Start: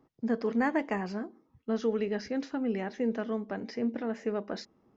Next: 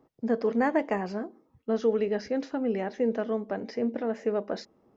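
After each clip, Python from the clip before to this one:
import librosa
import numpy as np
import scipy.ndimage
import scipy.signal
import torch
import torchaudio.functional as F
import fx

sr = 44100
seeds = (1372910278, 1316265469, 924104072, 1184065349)

y = fx.peak_eq(x, sr, hz=560.0, db=6.5, octaves=1.2)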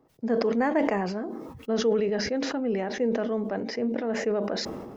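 y = fx.sustainer(x, sr, db_per_s=36.0)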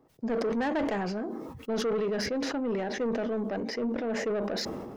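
y = 10.0 ** (-24.5 / 20.0) * np.tanh(x / 10.0 ** (-24.5 / 20.0))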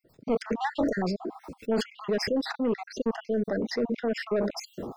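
y = fx.spec_dropout(x, sr, seeds[0], share_pct=56)
y = y * 10.0 ** (4.5 / 20.0)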